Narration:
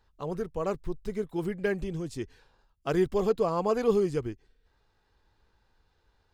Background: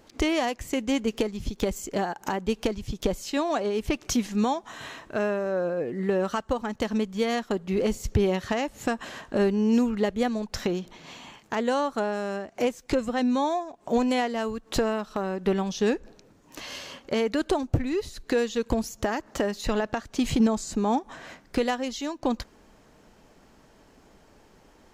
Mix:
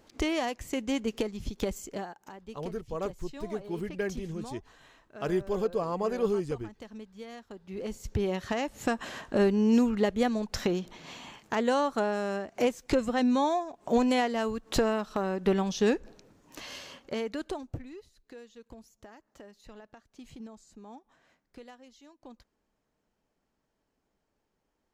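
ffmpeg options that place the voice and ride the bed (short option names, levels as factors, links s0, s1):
-filter_complex "[0:a]adelay=2350,volume=0.668[s0];[1:a]volume=4.22,afade=t=out:st=1.71:d=0.52:silence=0.211349,afade=t=in:st=7.57:d=1.43:silence=0.141254,afade=t=out:st=15.95:d=2.14:silence=0.0749894[s1];[s0][s1]amix=inputs=2:normalize=0"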